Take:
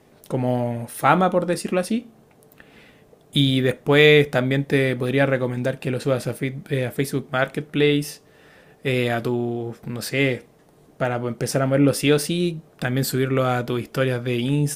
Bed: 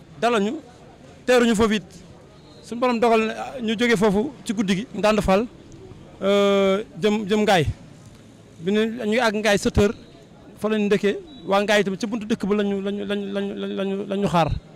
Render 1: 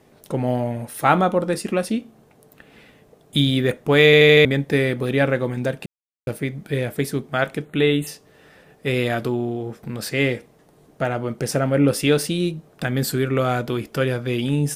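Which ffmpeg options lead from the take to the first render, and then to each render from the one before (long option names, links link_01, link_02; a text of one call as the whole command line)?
ffmpeg -i in.wav -filter_complex "[0:a]asettb=1/sr,asplit=3[link_01][link_02][link_03];[link_01]atrim=end=7.654[link_04];[link_02]atrim=start=7.65:end=8.07,asetpts=PTS-STARTPTS,afade=type=in:duration=0.004:curve=qsin,afade=type=out:start_time=0.416:duration=0.004:curve=qsin,asuperstop=centerf=5300:order=12:qfactor=2.3[link_05];[link_03]atrim=start=8.066[link_06];[link_04][link_05]acrossfade=duration=0.004:curve1=hsin:curve2=qsin[link_07];[link_07][link_06]acrossfade=duration=0.004:curve1=qsin:curve2=hsin,asplit=8[link_08][link_09][link_10][link_11][link_12][link_13][link_14][link_15];[link_08]atrim=end=4.132[link_16];[link_09]atrim=start=4.048:end=4.132[link_17];[link_10]atrim=start=4.048:end=4.132[link_18];[link_11]atrim=start=4.048:end=4.132[link_19];[link_12]atrim=start=4.048:end=4.132[link_20];[link_13]atrim=start=4.448:end=5.86,asetpts=PTS-STARTPTS,afade=type=out:start_time=1.408:duration=0.004:curve=hsin[link_21];[link_14]atrim=start=5.86:end=6.27,asetpts=PTS-STARTPTS,volume=0[link_22];[link_15]atrim=start=6.27,asetpts=PTS-STARTPTS,afade=type=in:duration=0.004:curve=hsin[link_23];[link_16][link_17]acrossfade=duration=0.004:curve1=hsin:curve2=hsin[link_24];[link_24][link_18]acrossfade=duration=0.004:curve1=hsin:curve2=hsin[link_25];[link_25][link_19]acrossfade=duration=0.004:curve1=hsin:curve2=hsin[link_26];[link_26][link_20]acrossfade=duration=0.004:curve1=hsin:curve2=hsin[link_27];[link_21][link_22][link_23]concat=n=3:v=0:a=1[link_28];[link_27][link_28]acrossfade=duration=0.004:curve1=hsin:curve2=hsin" out.wav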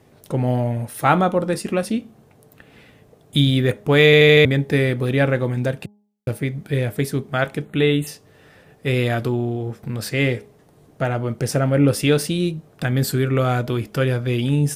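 ffmpeg -i in.wav -af "equalizer=frequency=100:width=1.6:gain=8,bandreject=frequency=206.9:width_type=h:width=4,bandreject=frequency=413.8:width_type=h:width=4,bandreject=frequency=620.7:width_type=h:width=4,bandreject=frequency=827.6:width_type=h:width=4,bandreject=frequency=1034.5:width_type=h:width=4" out.wav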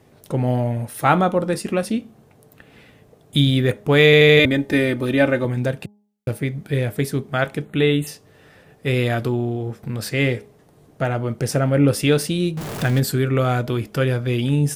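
ffmpeg -i in.wav -filter_complex "[0:a]asettb=1/sr,asplit=3[link_01][link_02][link_03];[link_01]atrim=end=4.394[link_04];[link_02]atrim=start=4.39:end=5.45,asetpts=PTS-STARTPTS,afade=type=in:duration=0.004:curve=qsin,afade=type=out:start_time=1.056:duration=0.004:curve=qsin,aecho=1:1:3.3:0.65,atrim=end_sample=46746[link_05];[link_03]atrim=start=5.446[link_06];[link_04][link_05]acrossfade=duration=0.004:curve1=hsin:curve2=qsin[link_07];[link_07][link_06]acrossfade=duration=0.004:curve1=qsin:curve2=hsin,asettb=1/sr,asplit=3[link_08][link_09][link_10];[link_08]atrim=end=12.574[link_11];[link_09]atrim=start=12.57:end=13,asetpts=PTS-STARTPTS,afade=type=in:duration=0.004:curve=qsin,afade=type=out:start_time=0.426:duration=0.004:curve=qsin,aeval=exprs='val(0)+0.5*0.0631*sgn(val(0))':channel_layout=same[link_12];[link_10]atrim=start=12.996[link_13];[link_11][link_12]acrossfade=duration=0.004:curve1=hsin:curve2=qsin[link_14];[link_14][link_13]acrossfade=duration=0.004:curve1=qsin:curve2=hsin" out.wav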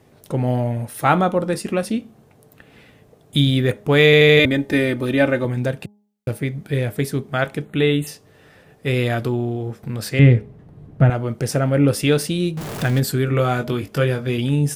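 ffmpeg -i in.wav -filter_complex "[0:a]asettb=1/sr,asplit=3[link_01][link_02][link_03];[link_01]atrim=end=10.194[link_04];[link_02]atrim=start=10.19:end=11.1,asetpts=PTS-STARTPTS,afade=type=in:duration=0.004:curve=qsin,afade=type=out:start_time=0.906:duration=0.004:curve=qsin,bass=frequency=250:gain=14,treble=frequency=4000:gain=-14[link_05];[link_03]atrim=start=11.096[link_06];[link_04][link_05]acrossfade=duration=0.004:curve1=hsin:curve2=qsin[link_07];[link_07][link_06]acrossfade=duration=0.004:curve1=qsin:curve2=hsin,asettb=1/sr,asplit=3[link_08][link_09][link_10];[link_08]atrim=end=13.264[link_11];[link_09]atrim=start=13.26:end=14.38,asetpts=PTS-STARTPTS,afade=type=in:duration=0.004:curve=qsin,afade=type=out:start_time=1.116:duration=0.004:curve=qsin,asplit=2[link_12][link_13];[link_13]adelay=21,volume=-7dB[link_14];[link_12][link_14]amix=inputs=2:normalize=0,atrim=end_sample=49392[link_15];[link_10]atrim=start=14.376[link_16];[link_11][link_15]acrossfade=duration=0.004:curve1=hsin:curve2=qsin[link_17];[link_17][link_16]acrossfade=duration=0.004:curve1=qsin:curve2=hsin" out.wav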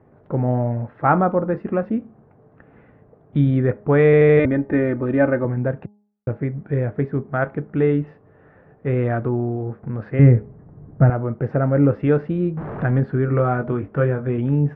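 ffmpeg -i in.wav -af "lowpass=frequency=1600:width=0.5412,lowpass=frequency=1600:width=1.3066" out.wav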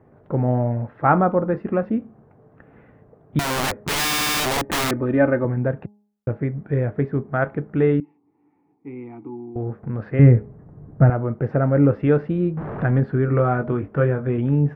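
ffmpeg -i in.wav -filter_complex "[0:a]asettb=1/sr,asplit=3[link_01][link_02][link_03];[link_01]atrim=end=3.394[link_04];[link_02]atrim=start=3.39:end=4.91,asetpts=PTS-STARTPTS,afade=type=in:duration=0.004:curve=qsin,afade=type=out:start_time=1.516:duration=0.004:curve=qsin,aeval=exprs='(mod(7.5*val(0)+1,2)-1)/7.5':channel_layout=same[link_05];[link_03]atrim=start=4.906[link_06];[link_04][link_05]acrossfade=duration=0.004:curve1=hsin:curve2=qsin[link_07];[link_07][link_06]acrossfade=duration=0.004:curve1=qsin:curve2=hsin,asettb=1/sr,asplit=3[link_08][link_09][link_10];[link_08]atrim=end=8.004[link_11];[link_09]atrim=start=8:end=9.56,asetpts=PTS-STARTPTS,afade=type=in:duration=0.004:curve=qsin,afade=type=out:start_time=1.556:duration=0.004:curve=qsin,asplit=3[link_12][link_13][link_14];[link_12]bandpass=frequency=300:width_type=q:width=8,volume=0dB[link_15];[link_13]bandpass=frequency=870:width_type=q:width=8,volume=-6dB[link_16];[link_14]bandpass=frequency=2240:width_type=q:width=8,volume=-9dB[link_17];[link_15][link_16][link_17]amix=inputs=3:normalize=0[link_18];[link_10]atrim=start=9.556[link_19];[link_11][link_18]acrossfade=duration=0.004:curve1=hsin:curve2=qsin[link_20];[link_20][link_19]acrossfade=duration=0.004:curve1=qsin:curve2=hsin" out.wav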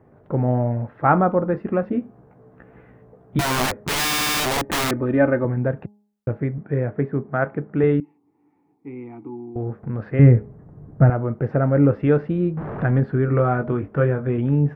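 ffmpeg -i in.wav -filter_complex "[0:a]asettb=1/sr,asplit=3[link_01][link_02][link_03];[link_01]atrim=end=1.904[link_04];[link_02]atrim=start=1.9:end=3.66,asetpts=PTS-STARTPTS,afade=type=in:duration=0.004:curve=qsin,afade=type=out:start_time=1.756:duration=0.004:curve=qsin,asplit=2[link_05][link_06];[link_06]adelay=16,volume=-3dB[link_07];[link_05][link_07]amix=inputs=2:normalize=0,atrim=end_sample=77616[link_08];[link_03]atrim=start=3.656[link_09];[link_04][link_08]acrossfade=duration=0.004:curve1=hsin:curve2=qsin[link_10];[link_10][link_09]acrossfade=duration=0.004:curve1=qsin:curve2=hsin,asettb=1/sr,asplit=3[link_11][link_12][link_13];[link_11]atrim=end=6.584[link_14];[link_12]atrim=start=6.58:end=7.84,asetpts=PTS-STARTPTS,afade=type=in:duration=0.004:curve=qsin,afade=type=out:start_time=1.256:duration=0.004:curve=qsin,highpass=110,lowpass=2800[link_15];[link_13]atrim=start=7.836[link_16];[link_14][link_15]acrossfade=duration=0.004:curve1=hsin:curve2=qsin[link_17];[link_17][link_16]acrossfade=duration=0.004:curve1=qsin:curve2=hsin" out.wav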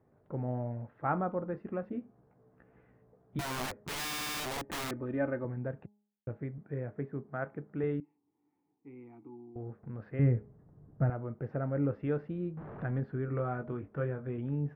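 ffmpeg -i in.wav -af "volume=-15dB" out.wav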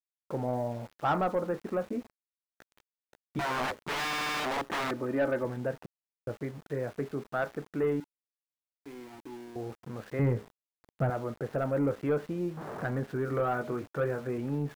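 ffmpeg -i in.wav -filter_complex "[0:a]asplit=2[link_01][link_02];[link_02]highpass=frequency=720:poles=1,volume=18dB,asoftclip=type=tanh:threshold=-17dB[link_03];[link_01][link_03]amix=inputs=2:normalize=0,lowpass=frequency=1600:poles=1,volume=-6dB,aeval=exprs='val(0)*gte(abs(val(0)),0.00422)':channel_layout=same" out.wav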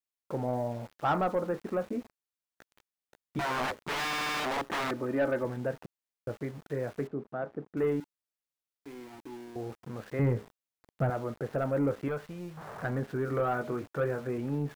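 ffmpeg -i in.wav -filter_complex "[0:a]asettb=1/sr,asplit=3[link_01][link_02][link_03];[link_01]atrim=end=7.074[link_04];[link_02]atrim=start=7.07:end=7.77,asetpts=PTS-STARTPTS,afade=type=in:duration=0.004:curve=qsin,afade=type=out:start_time=0.696:duration=0.004:curve=qsin,bandpass=frequency=260:width_type=q:width=0.52[link_05];[link_03]atrim=start=7.766[link_06];[link_04][link_05]acrossfade=duration=0.004:curve1=hsin:curve2=qsin[link_07];[link_07][link_06]acrossfade=duration=0.004:curve1=qsin:curve2=hsin,asettb=1/sr,asplit=3[link_08][link_09][link_10];[link_08]atrim=end=12.084[link_11];[link_09]atrim=start=12.08:end=12.84,asetpts=PTS-STARTPTS,afade=type=in:duration=0.004:curve=qsin,afade=type=out:start_time=0.756:duration=0.004:curve=qsin,equalizer=frequency=300:width=1.1:gain=-13[link_12];[link_10]atrim=start=12.836[link_13];[link_11][link_12]acrossfade=duration=0.004:curve1=hsin:curve2=qsin[link_14];[link_14][link_13]acrossfade=duration=0.004:curve1=qsin:curve2=hsin" out.wav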